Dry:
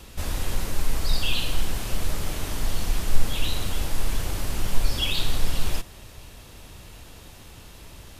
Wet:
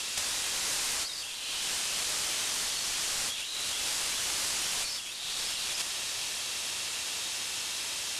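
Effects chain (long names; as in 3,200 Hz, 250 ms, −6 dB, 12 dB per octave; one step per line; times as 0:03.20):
meter weighting curve ITU-R 468
compressor whose output falls as the input rises −34 dBFS, ratio −1
on a send: feedback delay with all-pass diffusion 491 ms, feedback 49%, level −10 dB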